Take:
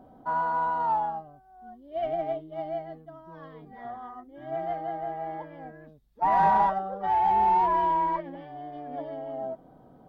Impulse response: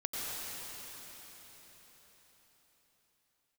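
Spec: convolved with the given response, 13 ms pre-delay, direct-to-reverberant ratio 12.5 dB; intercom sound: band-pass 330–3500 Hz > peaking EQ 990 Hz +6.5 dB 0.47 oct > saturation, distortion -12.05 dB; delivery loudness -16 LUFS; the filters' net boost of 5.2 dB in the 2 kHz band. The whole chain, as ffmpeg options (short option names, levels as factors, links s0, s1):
-filter_complex "[0:a]equalizer=f=2000:t=o:g=6.5,asplit=2[s0][s1];[1:a]atrim=start_sample=2205,adelay=13[s2];[s1][s2]afir=irnorm=-1:irlink=0,volume=0.133[s3];[s0][s3]amix=inputs=2:normalize=0,highpass=330,lowpass=3500,equalizer=f=990:t=o:w=0.47:g=6.5,asoftclip=threshold=0.119,volume=3.16"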